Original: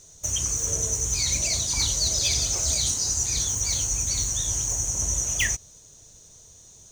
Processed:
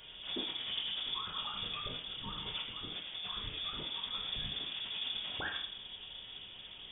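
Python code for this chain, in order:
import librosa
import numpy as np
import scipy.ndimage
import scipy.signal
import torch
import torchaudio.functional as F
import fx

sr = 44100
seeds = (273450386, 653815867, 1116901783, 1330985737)

y = scipy.signal.sosfilt(scipy.signal.butter(4, 100.0, 'highpass', fs=sr, output='sos'), x)
y = fx.over_compress(y, sr, threshold_db=-34.0, ratio=-1.0)
y = fx.room_shoebox(y, sr, seeds[0], volume_m3=110.0, walls='mixed', distance_m=0.8)
y = fx.freq_invert(y, sr, carrier_hz=3500)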